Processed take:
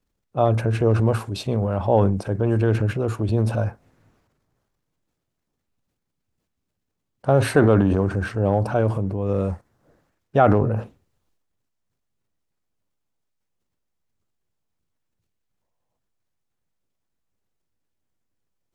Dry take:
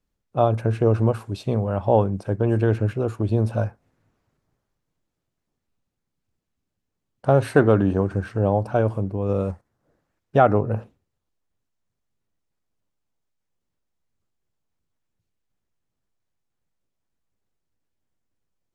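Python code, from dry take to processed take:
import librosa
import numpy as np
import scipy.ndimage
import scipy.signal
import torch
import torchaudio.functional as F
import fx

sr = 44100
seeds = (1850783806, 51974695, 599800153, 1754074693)

y = fx.spec_box(x, sr, start_s=15.62, length_s=0.36, low_hz=460.0, high_hz=1100.0, gain_db=10)
y = fx.transient(y, sr, attack_db=-1, sustain_db=8)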